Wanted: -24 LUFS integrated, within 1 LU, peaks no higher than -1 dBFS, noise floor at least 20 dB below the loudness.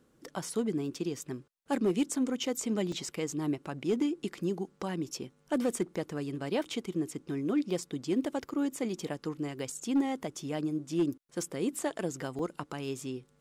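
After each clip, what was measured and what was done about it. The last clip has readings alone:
clipped samples 0.4%; clipping level -21.5 dBFS; dropouts 3; longest dropout 2.3 ms; loudness -34.0 LUFS; peak level -21.5 dBFS; loudness target -24.0 LUFS
-> clip repair -21.5 dBFS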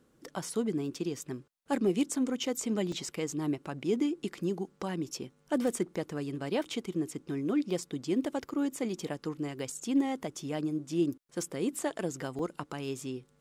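clipped samples 0.0%; dropouts 3; longest dropout 2.3 ms
-> interpolate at 2.92/7.83/12.39 s, 2.3 ms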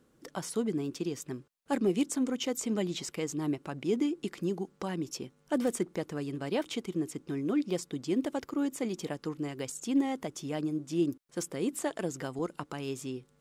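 dropouts 0; loudness -33.5 LUFS; peak level -15.5 dBFS; loudness target -24.0 LUFS
-> trim +9.5 dB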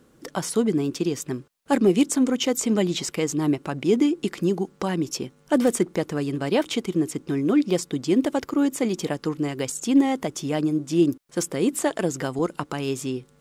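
loudness -24.0 LUFS; peak level -6.0 dBFS; noise floor -58 dBFS

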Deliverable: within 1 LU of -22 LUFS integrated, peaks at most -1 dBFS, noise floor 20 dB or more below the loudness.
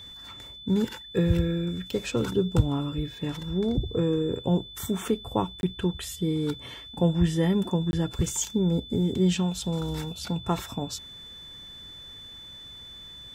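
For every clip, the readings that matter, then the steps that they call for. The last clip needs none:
dropouts 2; longest dropout 21 ms; steady tone 3.5 kHz; tone level -42 dBFS; loudness -27.5 LUFS; peak level -8.5 dBFS; loudness target -22.0 LUFS
-> interpolate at 5.61/7.91 s, 21 ms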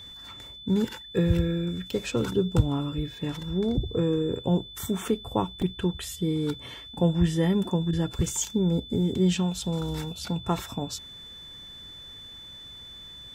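dropouts 0; steady tone 3.5 kHz; tone level -42 dBFS
-> band-stop 3.5 kHz, Q 30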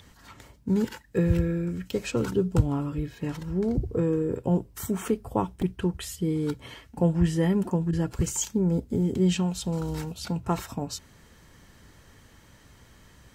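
steady tone not found; loudness -27.5 LUFS; peak level -8.5 dBFS; loudness target -22.0 LUFS
-> trim +5.5 dB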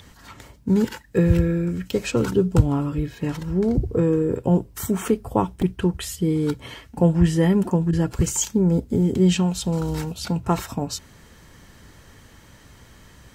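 loudness -22.0 LUFS; peak level -3.5 dBFS; noise floor -50 dBFS

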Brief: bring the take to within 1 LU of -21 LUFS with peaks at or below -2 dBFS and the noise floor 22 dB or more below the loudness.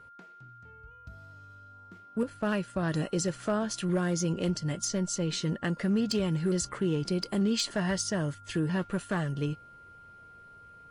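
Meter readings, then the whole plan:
clipped samples 0.4%; clipping level -21.0 dBFS; steady tone 1.4 kHz; tone level -50 dBFS; loudness -30.5 LUFS; peak level -21.0 dBFS; loudness target -21.0 LUFS
-> clip repair -21 dBFS; band-stop 1.4 kHz, Q 30; trim +9.5 dB

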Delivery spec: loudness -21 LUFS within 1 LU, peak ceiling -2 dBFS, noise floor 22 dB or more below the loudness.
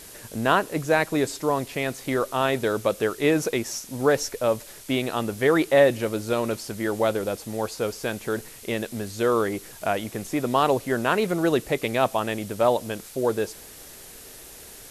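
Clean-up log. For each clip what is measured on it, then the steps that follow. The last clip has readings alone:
noise floor -44 dBFS; noise floor target -47 dBFS; loudness -25.0 LUFS; peak level -6.5 dBFS; loudness target -21.0 LUFS
-> noise reduction 6 dB, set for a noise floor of -44 dBFS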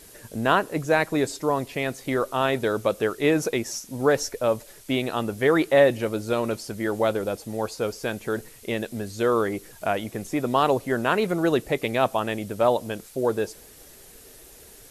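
noise floor -49 dBFS; loudness -25.0 LUFS; peak level -6.5 dBFS; loudness target -21.0 LUFS
-> trim +4 dB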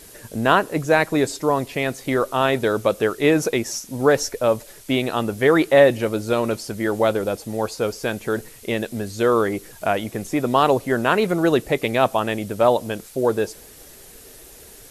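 loudness -21.0 LUFS; peak level -2.5 dBFS; noise floor -45 dBFS

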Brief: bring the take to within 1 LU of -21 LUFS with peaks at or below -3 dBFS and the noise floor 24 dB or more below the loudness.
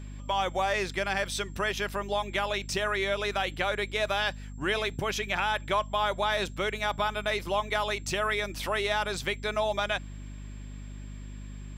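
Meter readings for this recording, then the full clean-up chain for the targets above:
hum 50 Hz; highest harmonic 250 Hz; hum level -38 dBFS; steady tone 7.5 kHz; tone level -60 dBFS; loudness -29.5 LUFS; peak level -14.5 dBFS; loudness target -21.0 LUFS
-> de-hum 50 Hz, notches 5; band-stop 7.5 kHz, Q 30; trim +8.5 dB

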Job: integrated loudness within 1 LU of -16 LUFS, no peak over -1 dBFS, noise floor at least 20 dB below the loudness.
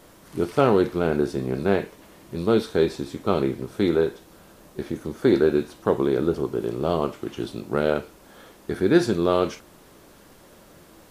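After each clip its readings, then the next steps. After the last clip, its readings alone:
loudness -23.5 LUFS; peak level -4.5 dBFS; loudness target -16.0 LUFS
-> trim +7.5 dB; peak limiter -1 dBFS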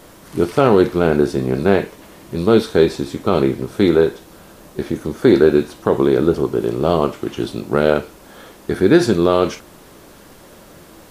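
loudness -16.5 LUFS; peak level -1.0 dBFS; noise floor -44 dBFS

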